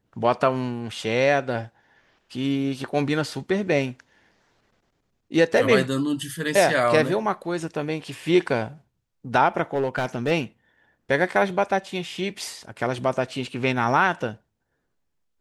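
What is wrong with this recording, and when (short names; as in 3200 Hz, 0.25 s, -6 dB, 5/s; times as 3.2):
9.73–10.32 clipped -17.5 dBFS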